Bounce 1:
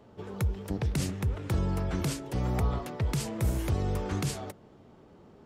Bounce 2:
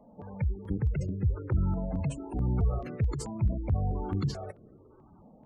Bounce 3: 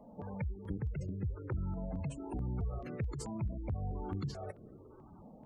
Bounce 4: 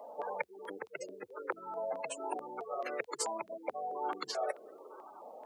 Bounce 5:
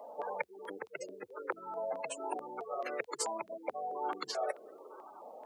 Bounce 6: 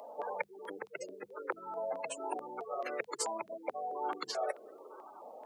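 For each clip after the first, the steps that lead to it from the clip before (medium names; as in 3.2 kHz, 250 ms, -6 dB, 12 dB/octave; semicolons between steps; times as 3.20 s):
spectral gate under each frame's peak -20 dB strong; stepped phaser 4.6 Hz 380–3400 Hz; trim +2.5 dB
compression 2.5:1, threshold -40 dBFS, peak gain reduction 12 dB; trim +1 dB
high-pass 500 Hz 24 dB/octave; trim +12 dB
no audible change
hum notches 50/100/150/200 Hz; upward compressor, threshold -57 dBFS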